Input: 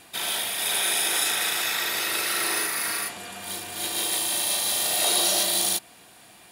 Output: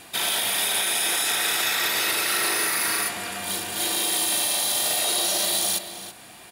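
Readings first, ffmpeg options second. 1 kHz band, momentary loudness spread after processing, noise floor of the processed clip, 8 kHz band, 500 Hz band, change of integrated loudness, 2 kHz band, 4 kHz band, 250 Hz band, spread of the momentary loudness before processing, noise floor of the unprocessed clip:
+2.0 dB, 6 LU, -46 dBFS, +1.0 dB, +1.5 dB, +1.5 dB, +2.5 dB, +1.5 dB, +2.0 dB, 9 LU, -51 dBFS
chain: -filter_complex "[0:a]alimiter=limit=-19.5dB:level=0:latency=1:release=24,asplit=2[a][b];[b]adelay=326.5,volume=-9dB,highshelf=f=4k:g=-7.35[c];[a][c]amix=inputs=2:normalize=0,volume=5dB"

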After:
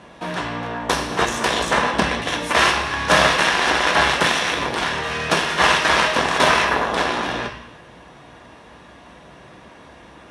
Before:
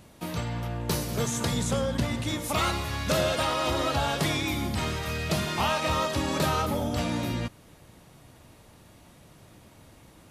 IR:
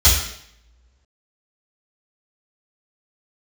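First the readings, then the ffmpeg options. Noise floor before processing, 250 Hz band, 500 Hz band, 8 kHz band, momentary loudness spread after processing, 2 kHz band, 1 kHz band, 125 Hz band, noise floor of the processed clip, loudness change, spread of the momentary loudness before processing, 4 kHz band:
-54 dBFS, +2.5 dB, +7.0 dB, +6.5 dB, 10 LU, +15.5 dB, +11.5 dB, -2.5 dB, -45 dBFS, +9.5 dB, 6 LU, +10.5 dB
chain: -filter_complex "[0:a]adynamicsmooth=sensitivity=7:basefreq=6.8k,aeval=exprs='0.224*(cos(1*acos(clip(val(0)/0.224,-1,1)))-cos(1*PI/2))+0.0708*(cos(7*acos(clip(val(0)/0.224,-1,1)))-cos(7*PI/2))':c=same,highpass=220,equalizer=f=980:t=q:w=4:g=5,equalizer=f=1.7k:t=q:w=4:g=6,equalizer=f=4.7k:t=q:w=4:g=-8,equalizer=f=7.4k:t=q:w=4:g=-7,lowpass=f=9.8k:w=0.5412,lowpass=f=9.8k:w=1.3066,asplit=2[a][b];[1:a]atrim=start_sample=2205,asetrate=35721,aresample=44100[c];[b][c]afir=irnorm=-1:irlink=0,volume=-25.5dB[d];[a][d]amix=inputs=2:normalize=0,volume=8dB"

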